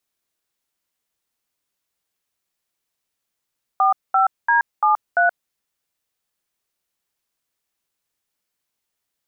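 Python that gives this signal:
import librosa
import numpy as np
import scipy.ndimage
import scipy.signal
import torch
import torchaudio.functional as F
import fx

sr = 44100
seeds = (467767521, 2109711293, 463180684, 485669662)

y = fx.dtmf(sr, digits='45D73', tone_ms=126, gap_ms=216, level_db=-15.5)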